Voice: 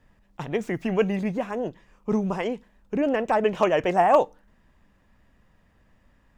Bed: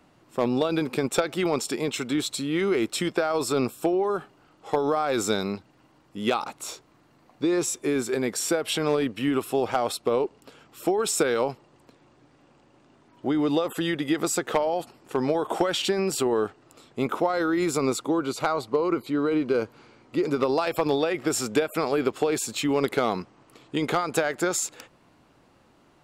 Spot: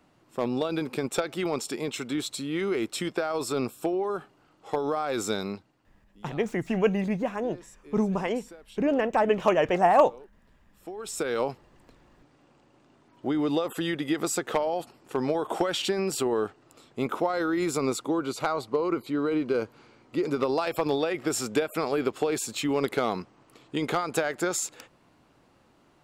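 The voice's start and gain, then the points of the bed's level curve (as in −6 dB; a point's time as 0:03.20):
5.85 s, −1.0 dB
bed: 0:05.52 −4 dB
0:06.29 −23.5 dB
0:10.62 −23.5 dB
0:11.39 −2.5 dB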